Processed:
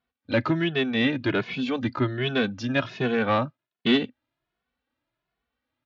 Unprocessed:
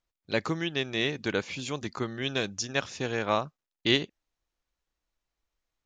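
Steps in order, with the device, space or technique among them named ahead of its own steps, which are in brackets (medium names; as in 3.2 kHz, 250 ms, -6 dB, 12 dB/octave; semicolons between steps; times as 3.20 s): barber-pole flanger into a guitar amplifier (endless flanger 2.3 ms +1.3 Hz; saturation -25 dBFS, distortion -13 dB; cabinet simulation 83–3800 Hz, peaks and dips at 120 Hz +6 dB, 250 Hz +10 dB, 660 Hz +3 dB, 1.5 kHz +4 dB); trim +8 dB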